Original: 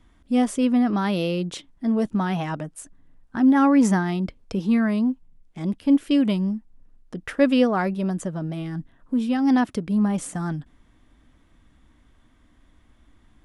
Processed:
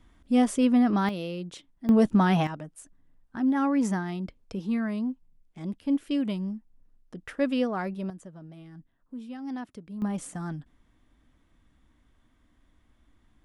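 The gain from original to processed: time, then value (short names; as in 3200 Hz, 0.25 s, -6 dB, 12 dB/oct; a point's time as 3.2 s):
-1.5 dB
from 1.09 s -9.5 dB
from 1.89 s +2.5 dB
from 2.47 s -8 dB
from 8.1 s -16.5 dB
from 10.02 s -7 dB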